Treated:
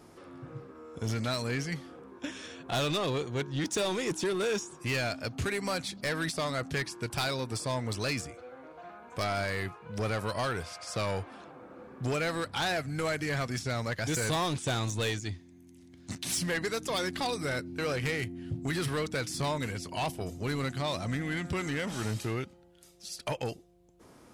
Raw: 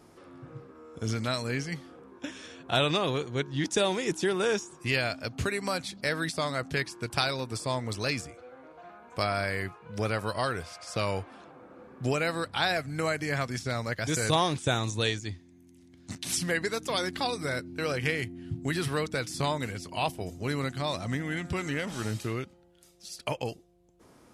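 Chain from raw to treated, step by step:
soft clipping −27 dBFS, distortion −10 dB
level +1.5 dB

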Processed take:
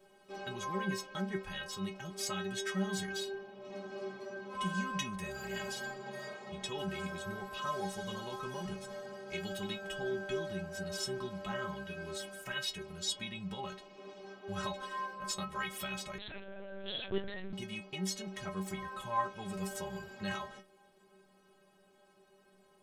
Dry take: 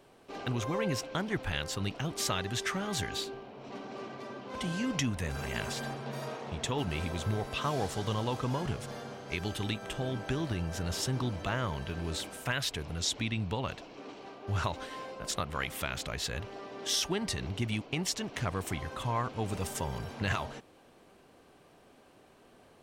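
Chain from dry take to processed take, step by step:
speech leveller within 3 dB 2 s
stiff-string resonator 190 Hz, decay 0.31 s, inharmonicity 0.008
0:16.18–0:17.53: linear-prediction vocoder at 8 kHz pitch kept
level +7 dB

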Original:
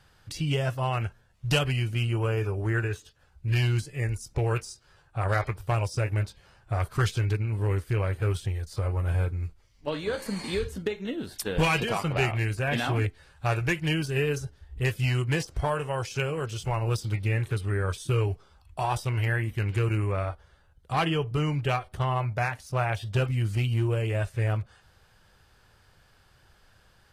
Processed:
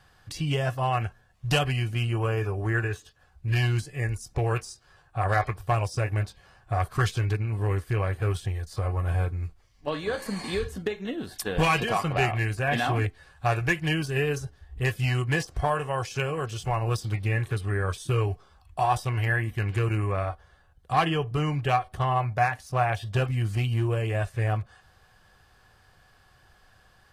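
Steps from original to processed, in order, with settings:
hollow resonant body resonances 740/1,100/1,700 Hz, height 9 dB

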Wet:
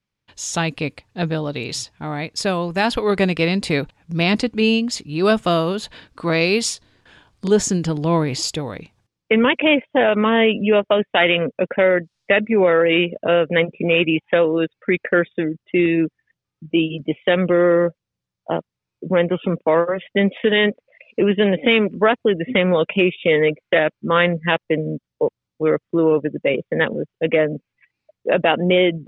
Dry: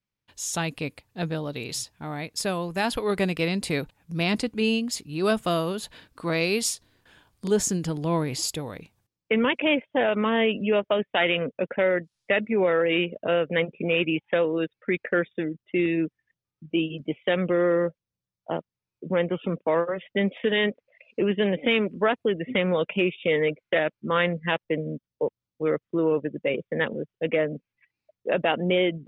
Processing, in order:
low-pass filter 6,600 Hz
level +7 dB

